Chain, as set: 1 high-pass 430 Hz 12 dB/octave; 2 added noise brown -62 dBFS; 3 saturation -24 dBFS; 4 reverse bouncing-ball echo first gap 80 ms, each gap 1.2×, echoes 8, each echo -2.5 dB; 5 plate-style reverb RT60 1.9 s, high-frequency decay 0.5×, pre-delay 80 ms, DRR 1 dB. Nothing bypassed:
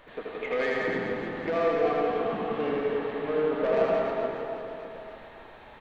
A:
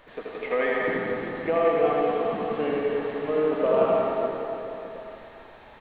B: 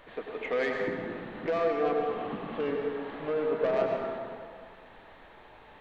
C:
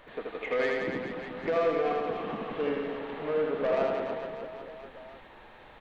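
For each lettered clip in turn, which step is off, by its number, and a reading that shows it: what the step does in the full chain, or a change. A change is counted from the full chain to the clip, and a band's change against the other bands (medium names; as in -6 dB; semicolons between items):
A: 3, distortion -13 dB; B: 4, echo-to-direct 5.0 dB to -1.0 dB; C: 5, echo-to-direct 5.0 dB to 1.0 dB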